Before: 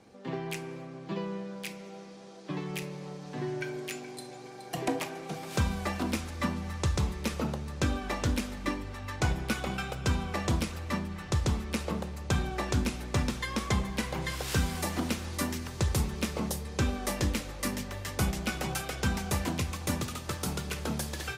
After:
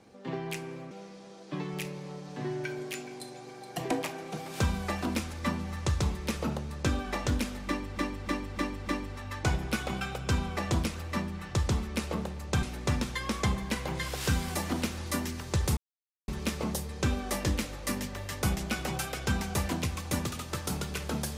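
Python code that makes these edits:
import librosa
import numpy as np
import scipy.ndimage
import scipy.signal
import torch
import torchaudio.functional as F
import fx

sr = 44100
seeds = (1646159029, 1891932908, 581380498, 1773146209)

y = fx.edit(x, sr, fx.cut(start_s=0.91, length_s=0.97),
    fx.repeat(start_s=8.64, length_s=0.3, count=5),
    fx.cut(start_s=12.4, length_s=0.5),
    fx.insert_silence(at_s=16.04, length_s=0.51), tone=tone)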